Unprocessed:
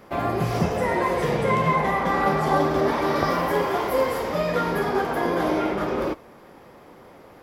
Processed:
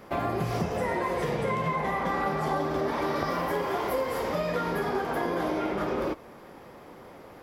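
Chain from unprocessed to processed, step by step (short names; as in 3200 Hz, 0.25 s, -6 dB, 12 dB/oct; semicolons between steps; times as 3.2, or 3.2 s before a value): compressor 4:1, threshold -26 dBFS, peak gain reduction 8.5 dB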